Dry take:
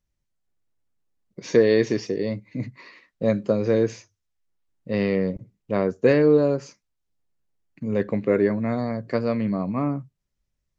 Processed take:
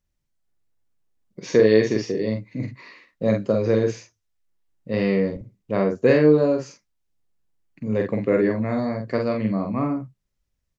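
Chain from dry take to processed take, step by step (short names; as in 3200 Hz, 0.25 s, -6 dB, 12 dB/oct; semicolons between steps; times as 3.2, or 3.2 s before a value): doubler 46 ms -4 dB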